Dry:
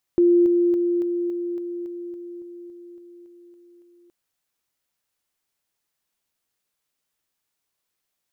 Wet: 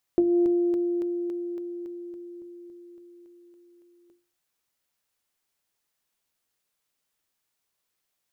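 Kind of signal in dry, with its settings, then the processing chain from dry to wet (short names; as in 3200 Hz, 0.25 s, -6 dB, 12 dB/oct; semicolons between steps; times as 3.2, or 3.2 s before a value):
level ladder 348 Hz -12.5 dBFS, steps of -3 dB, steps 14, 0.28 s 0.00 s
notches 50/100/150/200/250/300/350 Hz; Doppler distortion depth 0.12 ms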